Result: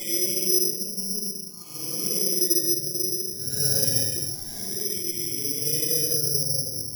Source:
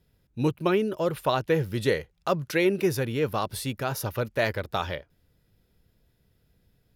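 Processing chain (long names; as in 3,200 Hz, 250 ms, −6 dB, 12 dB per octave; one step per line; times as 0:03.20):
dynamic equaliser 1,300 Hz, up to −7 dB, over −45 dBFS, Q 3
shaped tremolo saw up 1.3 Hz, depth 60%
transient designer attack +3 dB, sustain −10 dB
downward compressor, threshold −27 dBFS, peak gain reduction 10.5 dB
brickwall limiter −23.5 dBFS, peak gain reduction 10.5 dB
spectral peaks only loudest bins 32
delay that swaps between a low-pass and a high-pass 263 ms, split 970 Hz, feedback 54%, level −5 dB
extreme stretch with random phases 10×, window 0.05 s, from 0:02.63
rectangular room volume 410 cubic metres, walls furnished, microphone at 6.9 metres
bad sample-rate conversion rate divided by 8×, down filtered, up zero stuff
level that may rise only so fast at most 540 dB per second
level −13.5 dB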